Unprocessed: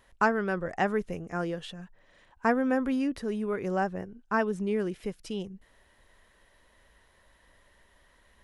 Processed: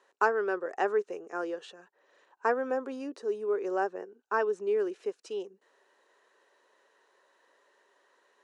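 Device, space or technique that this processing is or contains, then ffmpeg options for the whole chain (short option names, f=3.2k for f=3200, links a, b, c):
phone speaker on a table: -filter_complex "[0:a]highpass=f=370:w=0.5412,highpass=f=370:w=1.3066,equalizer=f=400:t=q:w=4:g=6,equalizer=f=650:t=q:w=4:g=-4,equalizer=f=2.1k:t=q:w=4:g=-9,equalizer=f=3.3k:t=q:w=4:g=-8,equalizer=f=5k:t=q:w=4:g=-5,lowpass=f=7.4k:w=0.5412,lowpass=f=7.4k:w=1.3066,asettb=1/sr,asplit=3[a][b][c];[a]atrim=end=2.704[d];[b]atrim=start=2.7:end=3.62,asetpts=PTS-STARTPTS,afade=t=in:d=0.004:c=qsin,afade=t=out:st=0.916:d=0.004:c=qsin,equalizer=f=1.9k:w=1:g=-5.5[e];[c]atrim=start=3.616[f];[d][e]acrossfade=d=0.004:c1=hsin:c2=qsin[g];[g][f]acrossfade=d=0.004:c1=qsin:c2=hsin"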